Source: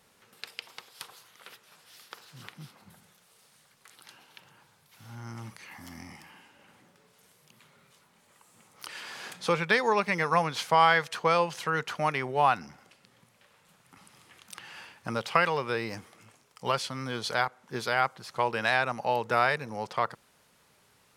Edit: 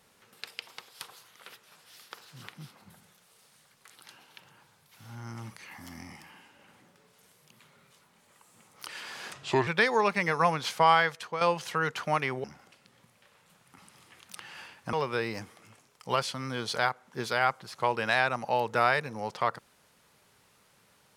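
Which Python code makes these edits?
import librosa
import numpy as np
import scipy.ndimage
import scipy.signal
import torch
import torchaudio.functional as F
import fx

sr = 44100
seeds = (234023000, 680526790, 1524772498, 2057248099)

y = fx.edit(x, sr, fx.speed_span(start_s=9.32, length_s=0.27, speed=0.77),
    fx.fade_out_to(start_s=10.79, length_s=0.54, floor_db=-11.0),
    fx.cut(start_s=12.36, length_s=0.27),
    fx.cut(start_s=15.12, length_s=0.37), tone=tone)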